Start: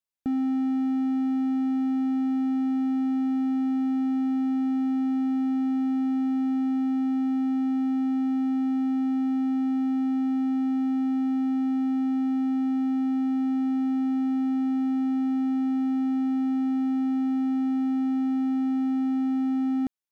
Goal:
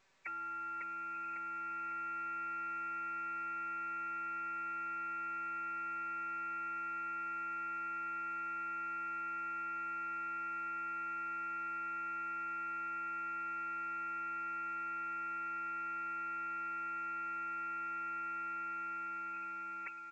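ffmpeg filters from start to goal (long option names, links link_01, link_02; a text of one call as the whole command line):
ffmpeg -i in.wav -filter_complex "[0:a]dynaudnorm=framelen=630:gausssize=5:maxgain=5dB,afftfilt=real='re*lt(hypot(re,im),0.0562)':imag='im*lt(hypot(re,im),0.0562)':win_size=1024:overlap=0.75,aecho=1:1:5.2:0.86,asplit=2[link_01][link_02];[link_02]adelay=551,lowpass=frequency=1700:poles=1,volume=-5dB,asplit=2[link_03][link_04];[link_04]adelay=551,lowpass=frequency=1700:poles=1,volume=0.43,asplit=2[link_05][link_06];[link_06]adelay=551,lowpass=frequency=1700:poles=1,volume=0.43,asplit=2[link_07][link_08];[link_08]adelay=551,lowpass=frequency=1700:poles=1,volume=0.43,asplit=2[link_09][link_10];[link_10]adelay=551,lowpass=frequency=1700:poles=1,volume=0.43[link_11];[link_03][link_05][link_07][link_09][link_11]amix=inputs=5:normalize=0[link_12];[link_01][link_12]amix=inputs=2:normalize=0,aeval=exprs='(tanh(178*val(0)+0.2)-tanh(0.2))/178':channel_layout=same,lowpass=frequency=2300:width_type=q:width=0.5098,lowpass=frequency=2300:width_type=q:width=0.6013,lowpass=frequency=2300:width_type=q:width=0.9,lowpass=frequency=2300:width_type=q:width=2.563,afreqshift=-2700,volume=8.5dB" -ar 16000 -c:a pcm_alaw out.wav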